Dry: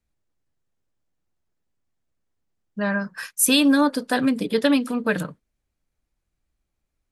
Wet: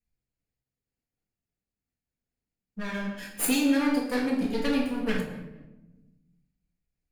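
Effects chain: comb filter that takes the minimum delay 0.42 ms; 3.07–4.41 s: resonant low shelf 200 Hz -10 dB, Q 1.5; simulated room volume 460 m³, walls mixed, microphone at 1.8 m; random flutter of the level, depth 50%; trim -8.5 dB

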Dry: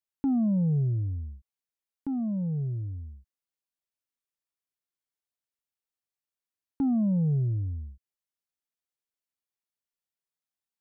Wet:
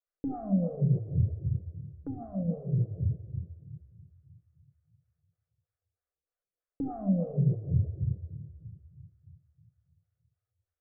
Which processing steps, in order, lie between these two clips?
low-pass 1.2 kHz 12 dB/octave; static phaser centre 910 Hz, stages 6; simulated room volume 1900 m³, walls mixed, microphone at 1.9 m; compression, threshold -25 dBFS, peak gain reduction 5.5 dB; lamp-driven phase shifter 3.2 Hz; trim +6.5 dB

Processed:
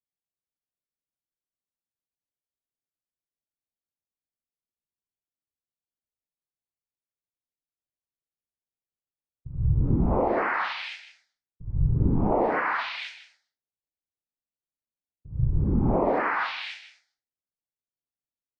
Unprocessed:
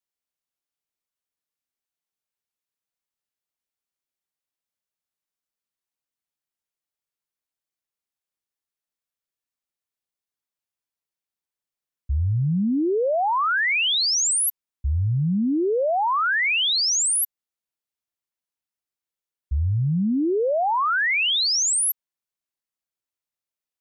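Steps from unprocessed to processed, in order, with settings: local Wiener filter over 25 samples; noise-vocoded speech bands 6; low-pass 1.3 kHz 12 dB/octave; tape speed +28%; frequency shift -280 Hz; level-controlled noise filter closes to 510 Hz, open at -28 dBFS; delay 156 ms -16 dB; tape noise reduction on one side only encoder only

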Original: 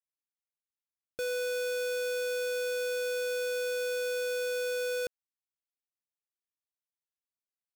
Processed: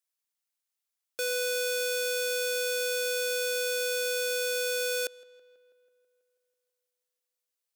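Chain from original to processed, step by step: high-pass 440 Hz 12 dB/octave; treble shelf 2.6 kHz +8 dB; filtered feedback delay 163 ms, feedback 66%, low-pass 3.7 kHz, level -21.5 dB; trim +2 dB

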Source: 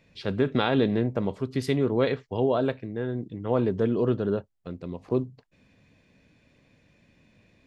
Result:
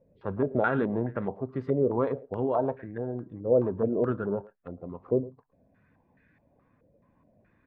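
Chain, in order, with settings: coarse spectral quantiser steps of 15 dB; speakerphone echo 110 ms, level -18 dB; step-sequenced low-pass 4.7 Hz 540–1700 Hz; trim -5 dB

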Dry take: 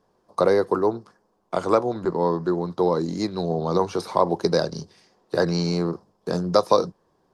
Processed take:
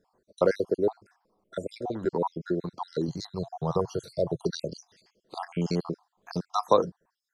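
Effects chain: random holes in the spectrogram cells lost 59%; 3.08–4.42 s: graphic EQ 125/250/2000 Hz +12/-10/-9 dB; trim -2.5 dB

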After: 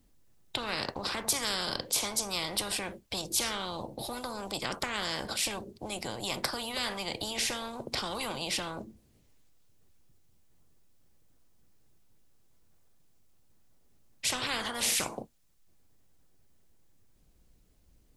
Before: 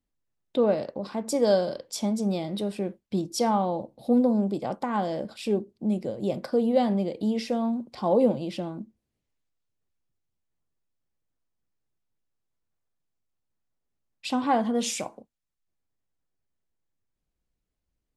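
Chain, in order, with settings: peaking EQ 1.6 kHz -5 dB 2.9 oct; spectrum-flattening compressor 10:1

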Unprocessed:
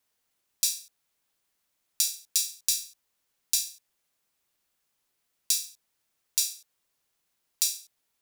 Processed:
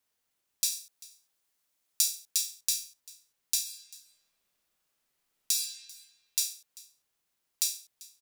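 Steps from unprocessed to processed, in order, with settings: 0.72–2.31 s: tone controls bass -3 dB, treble +3 dB; 3.60–5.59 s: reverb throw, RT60 1.9 s, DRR 0.5 dB; delay 392 ms -21.5 dB; trim -3 dB

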